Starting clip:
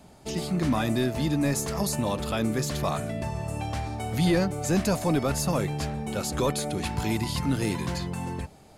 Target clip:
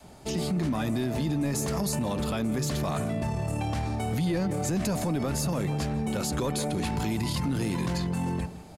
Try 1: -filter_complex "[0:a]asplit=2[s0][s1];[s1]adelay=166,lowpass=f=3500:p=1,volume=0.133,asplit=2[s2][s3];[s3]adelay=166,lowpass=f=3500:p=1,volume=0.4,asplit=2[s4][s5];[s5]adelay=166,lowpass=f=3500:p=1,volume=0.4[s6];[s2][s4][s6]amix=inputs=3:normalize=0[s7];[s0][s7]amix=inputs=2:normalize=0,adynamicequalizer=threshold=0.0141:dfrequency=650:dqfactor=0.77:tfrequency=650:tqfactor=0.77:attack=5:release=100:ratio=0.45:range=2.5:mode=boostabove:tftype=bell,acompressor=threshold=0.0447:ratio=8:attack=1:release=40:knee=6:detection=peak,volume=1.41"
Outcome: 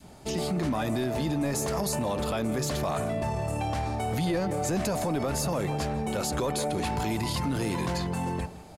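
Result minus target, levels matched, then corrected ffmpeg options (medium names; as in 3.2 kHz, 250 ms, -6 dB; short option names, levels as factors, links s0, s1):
500 Hz band +3.0 dB
-filter_complex "[0:a]asplit=2[s0][s1];[s1]adelay=166,lowpass=f=3500:p=1,volume=0.133,asplit=2[s2][s3];[s3]adelay=166,lowpass=f=3500:p=1,volume=0.4,asplit=2[s4][s5];[s5]adelay=166,lowpass=f=3500:p=1,volume=0.4[s6];[s2][s4][s6]amix=inputs=3:normalize=0[s7];[s0][s7]amix=inputs=2:normalize=0,adynamicequalizer=threshold=0.0141:dfrequency=190:dqfactor=0.77:tfrequency=190:tqfactor=0.77:attack=5:release=100:ratio=0.45:range=2.5:mode=boostabove:tftype=bell,acompressor=threshold=0.0447:ratio=8:attack=1:release=40:knee=6:detection=peak,volume=1.41"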